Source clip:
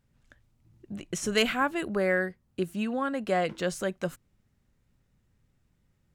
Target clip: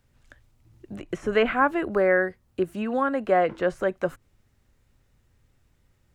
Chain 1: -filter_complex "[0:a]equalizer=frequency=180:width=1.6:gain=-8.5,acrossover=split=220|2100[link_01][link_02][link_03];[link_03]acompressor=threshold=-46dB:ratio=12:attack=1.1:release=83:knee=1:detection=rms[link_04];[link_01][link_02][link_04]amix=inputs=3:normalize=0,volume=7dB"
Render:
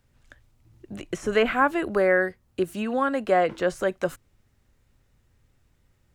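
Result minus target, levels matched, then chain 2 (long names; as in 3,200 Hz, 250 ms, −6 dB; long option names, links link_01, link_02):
downward compressor: peak gain reduction −10 dB
-filter_complex "[0:a]equalizer=frequency=180:width=1.6:gain=-8.5,acrossover=split=220|2100[link_01][link_02][link_03];[link_03]acompressor=threshold=-57dB:ratio=12:attack=1.1:release=83:knee=1:detection=rms[link_04];[link_01][link_02][link_04]amix=inputs=3:normalize=0,volume=7dB"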